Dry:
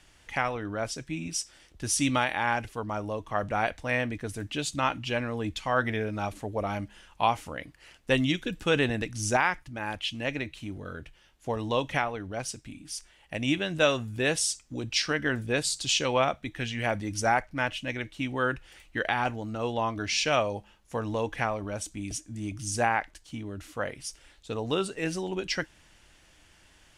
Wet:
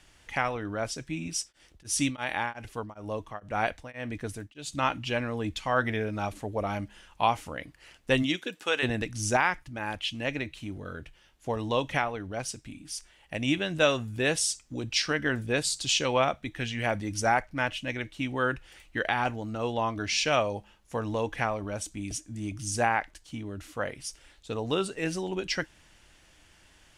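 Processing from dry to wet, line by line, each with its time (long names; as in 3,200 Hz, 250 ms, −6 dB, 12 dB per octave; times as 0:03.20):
0:01.33–0:04.80: tremolo along a rectified sine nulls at 3.6 Hz → 1.4 Hz
0:08.22–0:08.82: high-pass filter 190 Hz → 720 Hz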